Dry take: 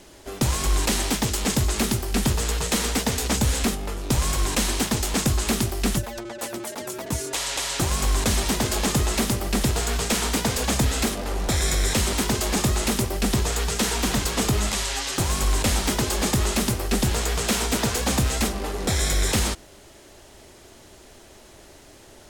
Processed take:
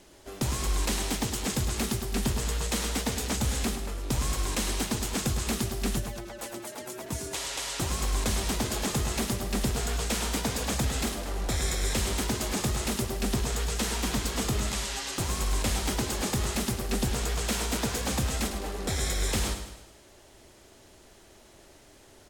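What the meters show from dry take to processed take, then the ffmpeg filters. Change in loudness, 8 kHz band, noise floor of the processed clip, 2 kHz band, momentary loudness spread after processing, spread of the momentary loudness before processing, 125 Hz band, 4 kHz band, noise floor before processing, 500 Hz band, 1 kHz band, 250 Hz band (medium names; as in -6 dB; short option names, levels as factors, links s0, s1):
-6.0 dB, -6.5 dB, -55 dBFS, -6.5 dB, 5 LU, 4 LU, -6.0 dB, -6.5 dB, -48 dBFS, -6.0 dB, -6.5 dB, -6.0 dB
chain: -af "aecho=1:1:105|210|315|420|525:0.355|0.17|0.0817|0.0392|0.0188,volume=0.447"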